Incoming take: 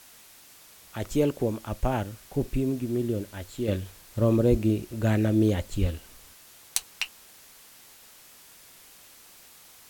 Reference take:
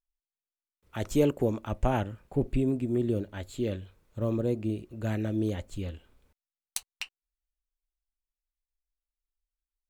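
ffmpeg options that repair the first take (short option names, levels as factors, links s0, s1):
-filter_complex "[0:a]asplit=3[s0][s1][s2];[s0]afade=t=out:st=4.5:d=0.02[s3];[s1]highpass=f=140:w=0.5412,highpass=f=140:w=1.3066,afade=t=in:st=4.5:d=0.02,afade=t=out:st=4.62:d=0.02[s4];[s2]afade=t=in:st=4.62:d=0.02[s5];[s3][s4][s5]amix=inputs=3:normalize=0,asplit=3[s6][s7][s8];[s6]afade=t=out:st=5.8:d=0.02[s9];[s7]highpass=f=140:w=0.5412,highpass=f=140:w=1.3066,afade=t=in:st=5.8:d=0.02,afade=t=out:st=5.92:d=0.02[s10];[s8]afade=t=in:st=5.92:d=0.02[s11];[s9][s10][s11]amix=inputs=3:normalize=0,afwtdn=0.0028,asetnsamples=n=441:p=0,asendcmd='3.68 volume volume -7dB',volume=1"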